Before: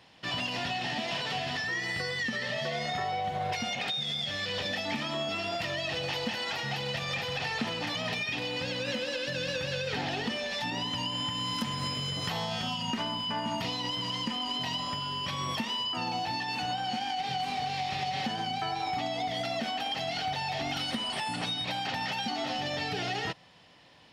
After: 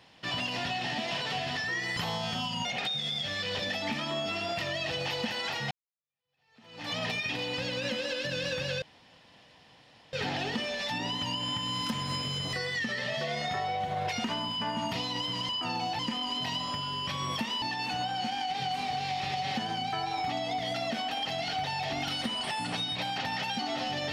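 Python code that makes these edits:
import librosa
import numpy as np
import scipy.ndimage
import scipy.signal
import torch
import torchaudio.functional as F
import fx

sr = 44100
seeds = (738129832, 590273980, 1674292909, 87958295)

y = fx.edit(x, sr, fx.swap(start_s=1.97, length_s=1.71, other_s=12.25, other_length_s=0.68),
    fx.fade_in_span(start_s=6.74, length_s=1.2, curve='exp'),
    fx.insert_room_tone(at_s=9.85, length_s=1.31),
    fx.move(start_s=15.81, length_s=0.5, to_s=14.18), tone=tone)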